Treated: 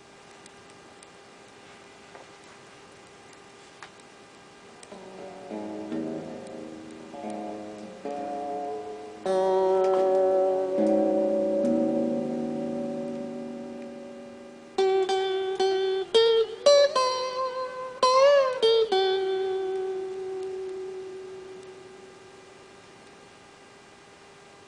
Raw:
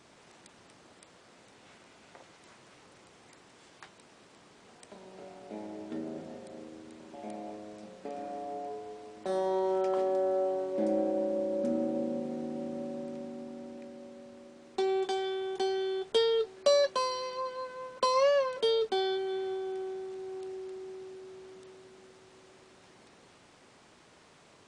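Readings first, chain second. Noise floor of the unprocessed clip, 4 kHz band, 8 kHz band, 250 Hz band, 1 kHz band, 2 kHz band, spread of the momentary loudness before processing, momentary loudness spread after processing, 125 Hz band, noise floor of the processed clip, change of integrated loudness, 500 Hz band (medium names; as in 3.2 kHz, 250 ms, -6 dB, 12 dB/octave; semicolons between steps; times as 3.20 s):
-59 dBFS, +6.5 dB, +6.5 dB, +6.5 dB, +6.5 dB, +7.0 dB, 20 LU, 21 LU, +6.5 dB, -51 dBFS, +6.5 dB, +6.5 dB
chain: vibrato 6.9 Hz 13 cents; mains buzz 400 Hz, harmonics 7, -62 dBFS -4 dB/octave; modulated delay 114 ms, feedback 54%, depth 162 cents, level -18 dB; trim +6.5 dB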